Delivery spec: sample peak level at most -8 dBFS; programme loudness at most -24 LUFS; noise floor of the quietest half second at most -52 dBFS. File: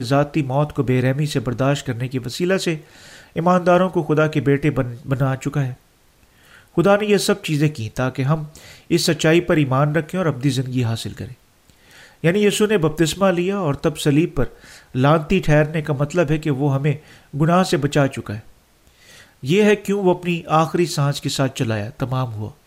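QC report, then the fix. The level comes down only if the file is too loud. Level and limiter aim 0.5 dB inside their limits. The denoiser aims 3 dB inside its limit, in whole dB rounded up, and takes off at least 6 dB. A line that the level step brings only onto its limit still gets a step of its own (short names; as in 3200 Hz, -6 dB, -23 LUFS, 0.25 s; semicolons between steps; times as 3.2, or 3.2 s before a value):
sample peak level -5.0 dBFS: fail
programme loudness -19.5 LUFS: fail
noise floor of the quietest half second -55 dBFS: OK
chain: gain -5 dB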